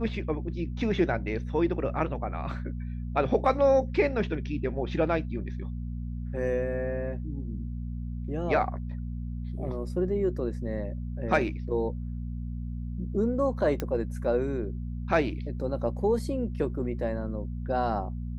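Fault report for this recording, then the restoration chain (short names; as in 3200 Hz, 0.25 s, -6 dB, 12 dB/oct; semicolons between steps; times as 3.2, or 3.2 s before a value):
hum 60 Hz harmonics 4 -34 dBFS
13.8 pop -16 dBFS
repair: de-click; de-hum 60 Hz, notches 4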